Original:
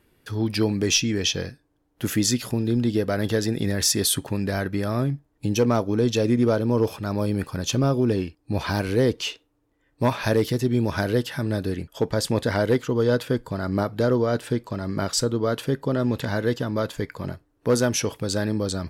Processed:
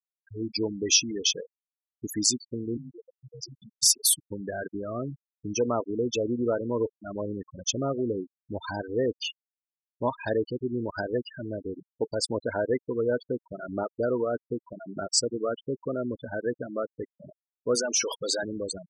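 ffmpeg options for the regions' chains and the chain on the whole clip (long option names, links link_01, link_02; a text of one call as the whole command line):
ffmpeg -i in.wav -filter_complex "[0:a]asettb=1/sr,asplit=3[link_01][link_02][link_03];[link_01]atrim=end=2.774[link_04];[link_02]atrim=start=2.77:end=4.26,asetpts=PTS-STARTPTS,afade=type=in:duration=0.004:curve=qsin,afade=type=out:start_time=1.486:duration=0.004:curve=qsin,bandreject=frequency=50:width_type=h:width=6,bandreject=frequency=100:width_type=h:width=6,bandreject=frequency=150:width_type=h:width=6,acrossover=split=140|3000[link_05][link_06][link_07];[link_06]acompressor=threshold=-37dB:ratio=4:attack=3.2:release=140:knee=2.83:detection=peak[link_08];[link_05][link_08][link_07]amix=inputs=3:normalize=0,afreqshift=23[link_09];[link_03]atrim=start=4.256[link_10];[link_04][link_09]acrossfade=duration=0.004:curve1=hsin:curve2=qsin[link_11];[link_11][link_10]acrossfade=duration=0.004:curve1=qsin:curve2=hsin,asettb=1/sr,asplit=3[link_12][link_13][link_14];[link_12]atrim=end=17.754[link_15];[link_13]atrim=start=17.75:end=18.43,asetpts=PTS-STARTPTS,afade=type=in:duration=0.004:curve=qsin,afade=type=out:start_time=0.676:duration=0.004:curve=qsin,acompressor=threshold=-26dB:ratio=5:attack=3.2:release=140:knee=1:detection=peak,asplit=2[link_16][link_17];[link_17]highpass=frequency=720:poles=1,volume=23dB,asoftclip=type=tanh:threshold=-15.5dB[link_18];[link_16][link_18]amix=inputs=2:normalize=0,lowpass=frequency=7400:poles=1,volume=-6dB[link_19];[link_14]atrim=start=18.426[link_20];[link_15][link_19]acrossfade=duration=0.004:curve1=hsin:curve2=qsin[link_21];[link_21][link_20]acrossfade=duration=0.004:curve1=qsin:curve2=hsin,bass=frequency=250:gain=-10,treble=frequency=4000:gain=6,afftfilt=real='re*gte(hypot(re,im),0.112)':imag='im*gte(hypot(re,im),0.112)':win_size=1024:overlap=0.75,volume=-3.5dB" out.wav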